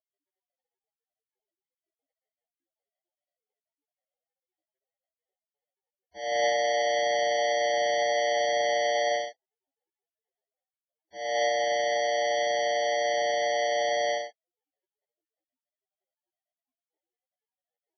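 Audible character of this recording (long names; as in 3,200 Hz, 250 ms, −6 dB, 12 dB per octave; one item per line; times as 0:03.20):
aliases and images of a low sample rate 1,300 Hz, jitter 0%
Ogg Vorbis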